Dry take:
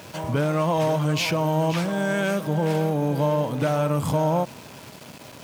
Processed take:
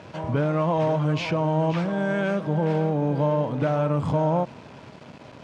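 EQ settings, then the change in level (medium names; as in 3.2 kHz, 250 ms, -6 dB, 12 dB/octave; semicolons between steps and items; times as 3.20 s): low-pass 10 kHz 12 dB/octave; distance through air 74 m; treble shelf 3.3 kHz -10 dB; 0.0 dB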